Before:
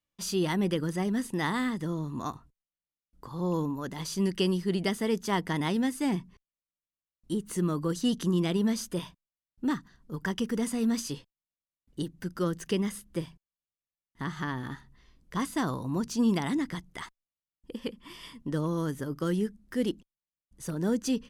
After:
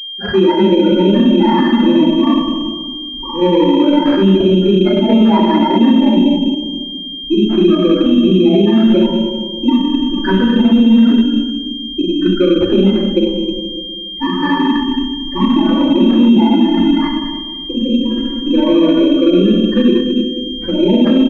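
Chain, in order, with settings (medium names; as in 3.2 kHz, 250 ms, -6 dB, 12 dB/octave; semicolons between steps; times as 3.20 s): peaking EQ 96 Hz -14 dB 1.1 oct; band-stop 1.2 kHz, Q 16; comb 3.4 ms, depth 92%; compression 6:1, threshold -29 dBFS, peak gain reduction 9.5 dB; loudest bins only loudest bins 8; echo from a far wall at 34 m, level -12 dB; simulated room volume 1300 m³, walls mixed, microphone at 4.1 m; loudness maximiser +17.5 dB; class-D stage that switches slowly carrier 3.2 kHz; trim -1.5 dB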